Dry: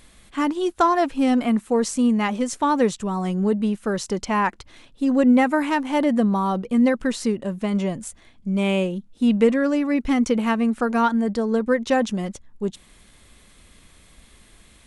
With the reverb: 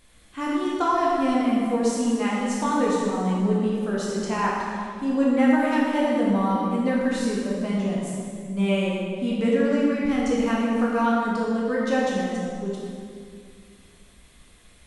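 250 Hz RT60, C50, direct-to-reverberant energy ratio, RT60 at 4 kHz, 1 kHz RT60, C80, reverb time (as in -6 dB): 2.5 s, -1.5 dB, -6.0 dB, 1.7 s, 2.1 s, 0.0 dB, 2.2 s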